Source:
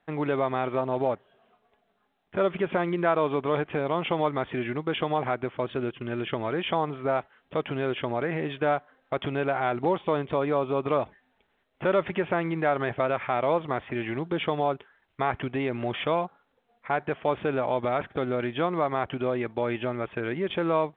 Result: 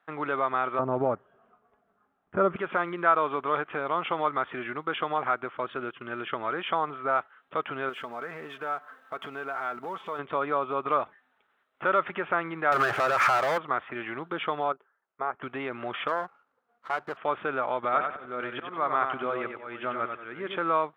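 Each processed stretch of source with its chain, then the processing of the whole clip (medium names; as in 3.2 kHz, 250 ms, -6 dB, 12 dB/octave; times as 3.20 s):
0.79–2.56 s: low-pass 3.6 kHz + tilt EQ -4.5 dB/octave
7.89–10.19 s: companding laws mixed up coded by mu + comb 4.5 ms, depth 39% + compression 1.5:1, threshold -43 dBFS
12.72–13.58 s: peaking EQ 230 Hz -7.5 dB 0.32 oct + compression 3:1, threshold -32 dBFS + waveshaping leveller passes 5
14.72–15.42 s: band-pass filter 420 Hz, Q 0.76 + band-stop 300 Hz, Q 5.3 + upward expansion, over -40 dBFS
16.08–17.17 s: distance through air 470 m + sliding maximum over 9 samples
17.84–20.58 s: slow attack 293 ms + feedback delay 93 ms, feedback 31%, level -6 dB
whole clip: high-pass 330 Hz 6 dB/octave; peaking EQ 1.3 kHz +13 dB 0.66 oct; trim -4 dB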